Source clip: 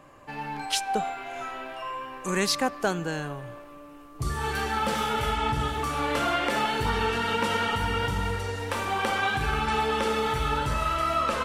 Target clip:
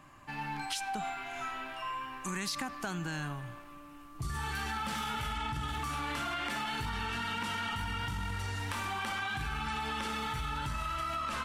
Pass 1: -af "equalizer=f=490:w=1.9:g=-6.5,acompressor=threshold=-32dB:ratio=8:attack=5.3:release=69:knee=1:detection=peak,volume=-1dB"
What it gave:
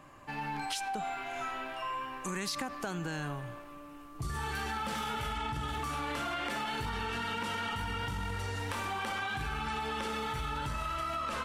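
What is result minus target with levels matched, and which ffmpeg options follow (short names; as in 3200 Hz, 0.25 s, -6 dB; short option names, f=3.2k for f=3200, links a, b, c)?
500 Hz band +5.0 dB
-af "equalizer=f=490:w=1.9:g=-16,acompressor=threshold=-32dB:ratio=8:attack=5.3:release=69:knee=1:detection=peak,volume=-1dB"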